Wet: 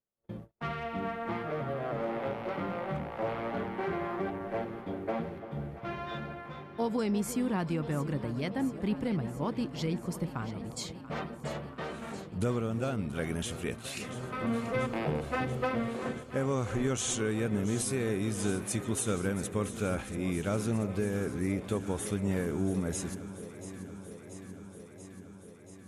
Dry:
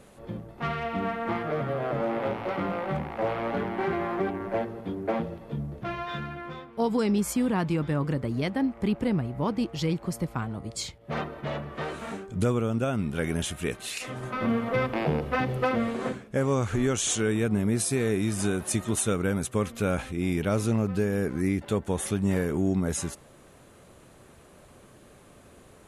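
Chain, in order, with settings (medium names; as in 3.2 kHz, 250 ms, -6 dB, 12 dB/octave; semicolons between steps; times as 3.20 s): gate -39 dBFS, range -39 dB; echo whose repeats swap between lows and highs 342 ms, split 870 Hz, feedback 86%, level -12 dB; trim -5.5 dB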